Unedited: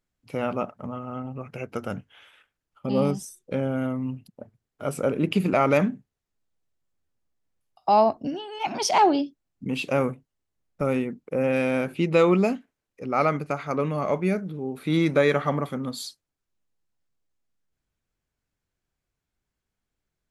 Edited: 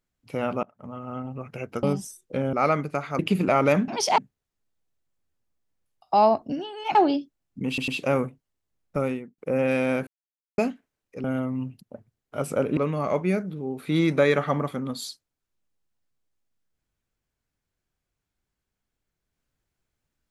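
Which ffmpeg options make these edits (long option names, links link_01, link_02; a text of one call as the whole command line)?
ffmpeg -i in.wav -filter_complex "[0:a]asplit=15[link_01][link_02][link_03][link_04][link_05][link_06][link_07][link_08][link_09][link_10][link_11][link_12][link_13][link_14][link_15];[link_01]atrim=end=0.63,asetpts=PTS-STARTPTS,afade=type=out:start_time=0.626:duration=0.004:curve=hsin:silence=0.0668344[link_16];[link_02]atrim=start=0.63:end=1.832,asetpts=PTS-STARTPTS,afade=type=in:duration=0.48:silence=0.0668344[link_17];[link_03]atrim=start=3.008:end=3.712[link_18];[link_04]atrim=start=13.088:end=13.752[link_19];[link_05]atrim=start=5.238:end=5.932[link_20];[link_06]atrim=start=8.698:end=9.002[link_21];[link_07]atrim=start=5.928:end=8.702[link_22];[link_08]atrim=start=8.998:end=9.832[link_23];[link_09]atrim=start=9.728:end=9.832[link_24];[link_10]atrim=start=9.728:end=11.23,asetpts=PTS-STARTPTS,afade=type=out:start_time=1.092:duration=0.41[link_25];[link_11]atrim=start=11.23:end=11.92,asetpts=PTS-STARTPTS,afade=type=in:duration=0.004:curve=hsin,afade=type=out:start_time=0.686:duration=0.004:curve=hsin[link_26];[link_12]atrim=start=11.92:end=12.43,asetpts=PTS-STARTPTS,volume=0[link_27];[link_13]atrim=start=12.43:end=13.092,asetpts=PTS-STARTPTS,afade=type=in:duration=0.004:curve=hsin[link_28];[link_14]atrim=start=3.708:end=5.242[link_29];[link_15]atrim=start=13.748[link_30];[link_16][link_17]concat=n=2:v=0:a=1[link_31];[link_31][link_18]acrossfade=duration=0.004:curve1=hsin:curve2=hsin[link_32];[link_32][link_19]acrossfade=duration=0.004:curve1=hsin:curve2=hsin[link_33];[link_33][link_20]acrossfade=duration=0.004:curve1=hsin:curve2=hsin[link_34];[link_34][link_21]acrossfade=duration=0.004:curve1=hsin:curve2=hsin[link_35];[link_35][link_22]acrossfade=duration=0.004:curve1=hsin:curve2=hsin[link_36];[link_36][link_23]acrossfade=duration=0.004:curve1=hsin:curve2=hsin[link_37];[link_37][link_24]acrossfade=duration=0.004:curve1=hsin:curve2=hsin[link_38];[link_25][link_26][link_27][link_28]concat=n=4:v=0:a=1[link_39];[link_38][link_39]acrossfade=duration=0.004:curve1=hsin:curve2=hsin[link_40];[link_40][link_29]acrossfade=duration=0.004:curve1=hsin:curve2=hsin[link_41];[link_41][link_30]acrossfade=duration=0.004:curve1=hsin:curve2=hsin" out.wav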